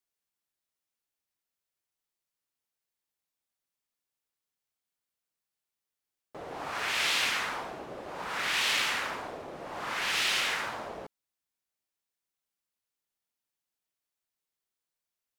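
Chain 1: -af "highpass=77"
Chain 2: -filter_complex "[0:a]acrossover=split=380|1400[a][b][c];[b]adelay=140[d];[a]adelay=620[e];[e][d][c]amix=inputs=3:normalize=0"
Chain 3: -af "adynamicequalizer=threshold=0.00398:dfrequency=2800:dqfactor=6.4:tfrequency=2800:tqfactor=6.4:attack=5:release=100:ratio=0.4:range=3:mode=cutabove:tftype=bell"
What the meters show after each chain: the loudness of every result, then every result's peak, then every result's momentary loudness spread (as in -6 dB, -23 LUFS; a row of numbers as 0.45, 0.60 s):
-29.5, -30.5, -30.0 LUFS; -16.0, -16.5, -16.5 dBFS; 16, 17, 15 LU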